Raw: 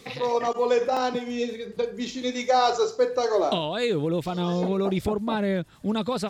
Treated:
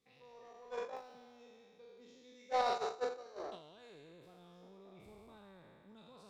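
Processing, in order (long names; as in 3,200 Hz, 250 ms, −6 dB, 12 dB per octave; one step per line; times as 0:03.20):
peak hold with a decay on every bin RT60 2.30 s
soft clipping −13 dBFS, distortion −18 dB
noise gate −15 dBFS, range −42 dB
dynamic equaliser 1,100 Hz, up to +5 dB, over −60 dBFS, Q 0.81
level +7.5 dB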